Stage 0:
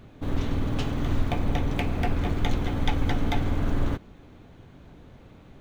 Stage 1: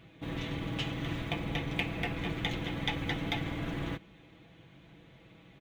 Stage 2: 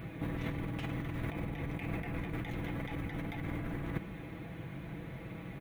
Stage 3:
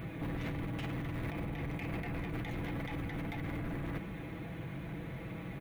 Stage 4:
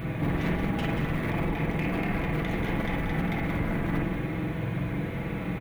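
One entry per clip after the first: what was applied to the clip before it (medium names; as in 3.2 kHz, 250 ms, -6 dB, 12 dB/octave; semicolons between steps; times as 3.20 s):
high-pass 63 Hz 12 dB/octave; high-order bell 2.6 kHz +8 dB 1.2 oct; comb 6.1 ms, depth 58%; trim -7.5 dB
high-order bell 4.7 kHz -11.5 dB; compressor with a negative ratio -43 dBFS, ratio -1; tone controls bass +3 dB, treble +5 dB; trim +3.5 dB
saturation -34.5 dBFS, distortion -13 dB; trim +2.5 dB
delay 183 ms -7.5 dB; reverberation, pre-delay 45 ms, DRR 0.5 dB; trim +7.5 dB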